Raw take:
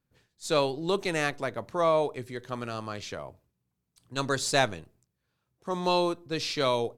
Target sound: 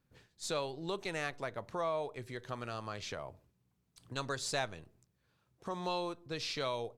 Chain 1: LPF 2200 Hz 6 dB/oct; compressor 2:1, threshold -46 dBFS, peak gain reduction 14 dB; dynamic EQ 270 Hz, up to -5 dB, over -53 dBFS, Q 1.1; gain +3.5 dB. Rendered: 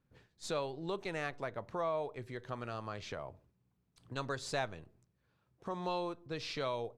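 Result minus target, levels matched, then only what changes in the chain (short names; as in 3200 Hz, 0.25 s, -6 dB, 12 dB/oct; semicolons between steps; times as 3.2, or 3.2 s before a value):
8000 Hz band -5.5 dB
change: LPF 7700 Hz 6 dB/oct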